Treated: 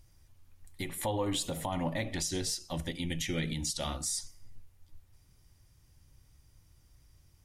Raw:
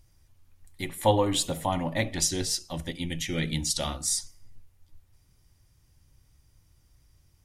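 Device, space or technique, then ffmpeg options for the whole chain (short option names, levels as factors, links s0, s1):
stacked limiters: -af "alimiter=limit=0.15:level=0:latency=1:release=343,alimiter=limit=0.0668:level=0:latency=1:release=93"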